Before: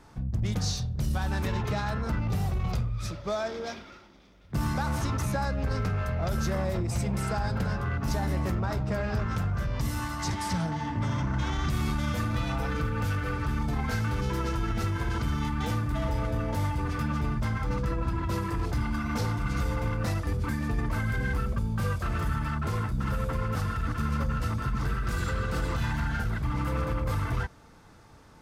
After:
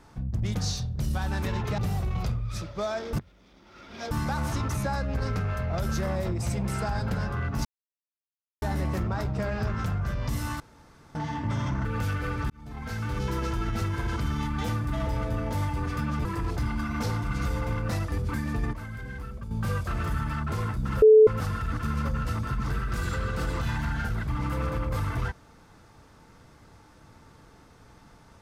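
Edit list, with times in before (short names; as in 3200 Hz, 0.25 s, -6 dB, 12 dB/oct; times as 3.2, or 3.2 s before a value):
1.78–2.27 cut
3.62–4.6 reverse
8.14 insert silence 0.97 s
10.12–10.67 room tone
11.37–12.87 cut
13.52–14.26 fade in
17.27–18.4 cut
20.88–21.66 gain -9 dB
23.17–23.42 bleep 434 Hz -10.5 dBFS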